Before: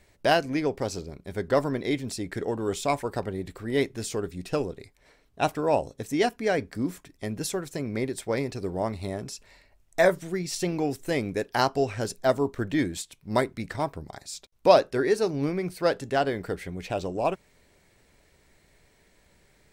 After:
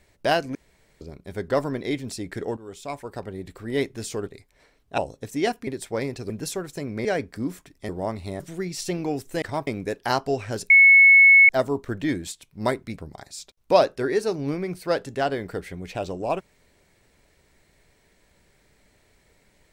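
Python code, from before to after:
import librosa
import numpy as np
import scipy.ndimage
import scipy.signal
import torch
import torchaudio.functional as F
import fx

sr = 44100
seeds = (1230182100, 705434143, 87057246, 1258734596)

y = fx.edit(x, sr, fx.room_tone_fill(start_s=0.55, length_s=0.46),
    fx.fade_in_from(start_s=2.57, length_s=1.13, floor_db=-15.0),
    fx.cut(start_s=4.27, length_s=0.46),
    fx.cut(start_s=5.44, length_s=0.31),
    fx.swap(start_s=6.44, length_s=0.84, other_s=8.03, other_length_s=0.63),
    fx.cut(start_s=9.17, length_s=0.97),
    fx.insert_tone(at_s=12.19, length_s=0.79, hz=2200.0, db=-9.0),
    fx.move(start_s=13.68, length_s=0.25, to_s=11.16), tone=tone)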